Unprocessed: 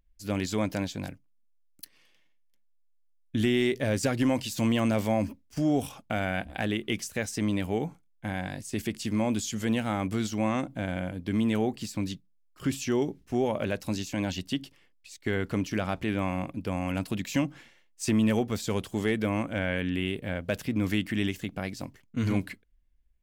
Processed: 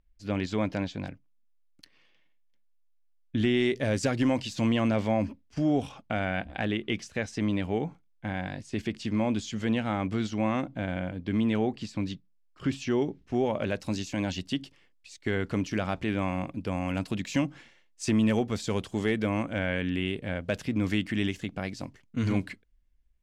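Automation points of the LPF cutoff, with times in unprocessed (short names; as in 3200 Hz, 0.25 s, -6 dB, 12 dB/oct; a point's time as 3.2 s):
3.37 s 3900 Hz
3.87 s 8300 Hz
4.88 s 4400 Hz
13.24 s 4400 Hz
13.81 s 7700 Hz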